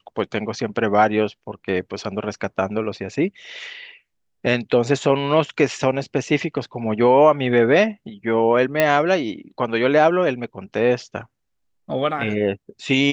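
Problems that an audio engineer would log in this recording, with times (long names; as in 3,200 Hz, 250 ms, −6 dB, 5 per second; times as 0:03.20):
0:08.80: click −3 dBFS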